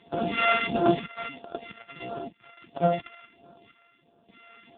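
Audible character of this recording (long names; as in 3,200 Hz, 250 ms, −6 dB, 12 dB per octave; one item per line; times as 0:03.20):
a buzz of ramps at a fixed pitch in blocks of 64 samples
sample-and-hold tremolo, depth 85%
phaser sweep stages 2, 1.5 Hz, lowest notch 350–2,200 Hz
AMR narrowband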